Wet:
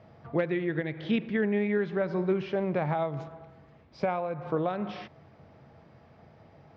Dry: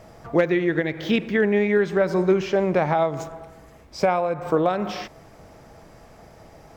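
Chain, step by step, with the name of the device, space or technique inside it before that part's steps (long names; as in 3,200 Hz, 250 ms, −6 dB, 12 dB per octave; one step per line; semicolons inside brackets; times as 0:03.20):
guitar cabinet (loudspeaker in its box 87–4,200 Hz, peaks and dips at 89 Hz +9 dB, 140 Hz +8 dB, 220 Hz +4 dB)
level −9 dB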